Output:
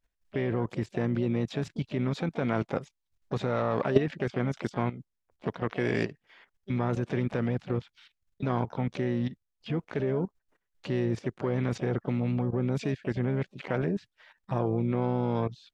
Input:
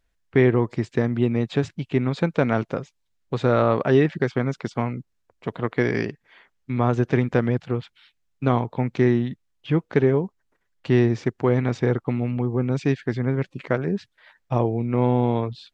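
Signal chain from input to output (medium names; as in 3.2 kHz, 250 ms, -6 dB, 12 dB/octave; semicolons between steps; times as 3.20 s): level held to a coarse grid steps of 14 dB; harmony voices +7 st -12 dB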